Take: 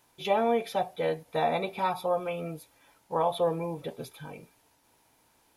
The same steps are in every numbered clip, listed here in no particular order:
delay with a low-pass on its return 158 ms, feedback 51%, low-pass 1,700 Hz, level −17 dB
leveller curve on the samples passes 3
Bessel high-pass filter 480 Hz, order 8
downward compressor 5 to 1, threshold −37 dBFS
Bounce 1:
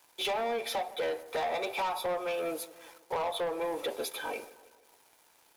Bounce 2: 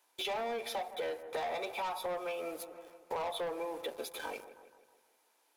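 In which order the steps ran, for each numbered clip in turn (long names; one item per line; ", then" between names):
Bessel high-pass filter, then downward compressor, then leveller curve on the samples, then delay with a low-pass on its return
Bessel high-pass filter, then leveller curve on the samples, then delay with a low-pass on its return, then downward compressor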